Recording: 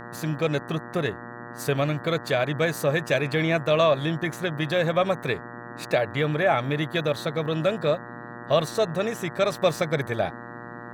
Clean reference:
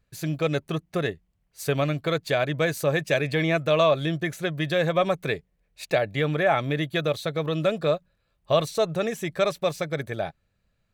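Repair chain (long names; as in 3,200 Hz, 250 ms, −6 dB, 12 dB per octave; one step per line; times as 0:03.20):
hum removal 119.3 Hz, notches 16
noise reduction from a noise print 30 dB
level 0 dB, from 0:09.52 −3.5 dB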